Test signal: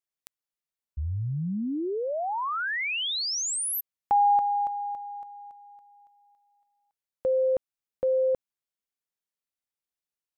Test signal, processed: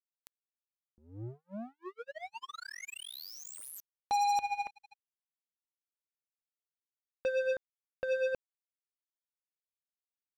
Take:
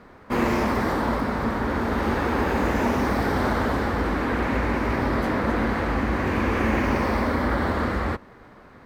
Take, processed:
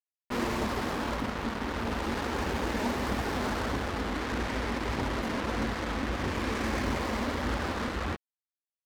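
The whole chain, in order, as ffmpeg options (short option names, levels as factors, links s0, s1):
-af "aphaser=in_gain=1:out_gain=1:delay=5:decay=0.29:speed=1.6:type=triangular,acrusher=bits=3:mix=0:aa=0.5,volume=0.355"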